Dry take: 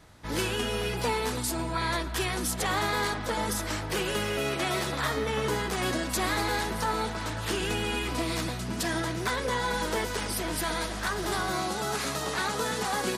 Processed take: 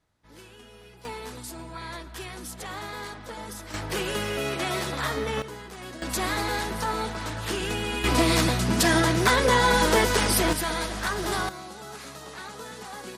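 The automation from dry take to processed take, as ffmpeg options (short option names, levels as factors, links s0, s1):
-af "asetnsamples=n=441:p=0,asendcmd='1.05 volume volume -8.5dB;3.74 volume volume 0.5dB;5.42 volume volume -11dB;6.02 volume volume 0.5dB;8.04 volume volume 9dB;10.53 volume volume 2dB;11.49 volume volume -10dB',volume=0.106"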